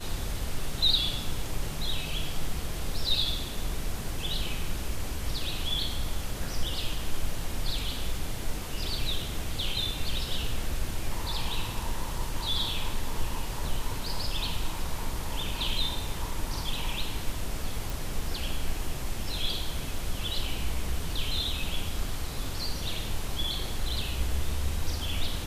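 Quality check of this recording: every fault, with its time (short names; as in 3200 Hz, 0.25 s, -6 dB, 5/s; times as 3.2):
17.9 pop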